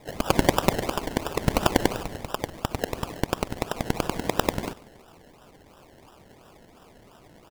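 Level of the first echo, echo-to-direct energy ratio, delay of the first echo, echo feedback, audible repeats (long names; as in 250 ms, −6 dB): −21.5 dB, −21.0 dB, 143 ms, 34%, 2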